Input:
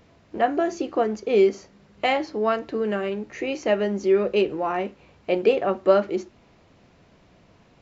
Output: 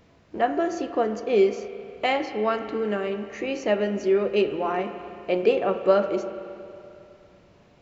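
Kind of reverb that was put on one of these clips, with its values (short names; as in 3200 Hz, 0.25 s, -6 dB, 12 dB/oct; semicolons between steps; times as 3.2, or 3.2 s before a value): spring tank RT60 2.7 s, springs 33/48 ms, chirp 40 ms, DRR 8.5 dB; gain -1.5 dB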